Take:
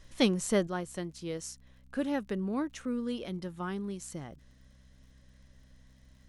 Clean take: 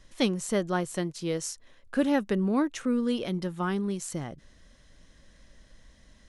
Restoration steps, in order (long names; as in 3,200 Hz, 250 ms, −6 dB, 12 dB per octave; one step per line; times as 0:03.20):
click removal
hum removal 64.5 Hz, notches 4
level correction +7 dB, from 0:00.67